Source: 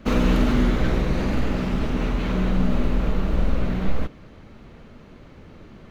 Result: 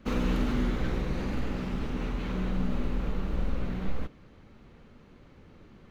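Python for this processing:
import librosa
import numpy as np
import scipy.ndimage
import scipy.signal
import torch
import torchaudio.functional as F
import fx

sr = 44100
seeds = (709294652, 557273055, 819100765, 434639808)

y = fx.notch(x, sr, hz=640.0, q=12.0)
y = y * librosa.db_to_amplitude(-8.5)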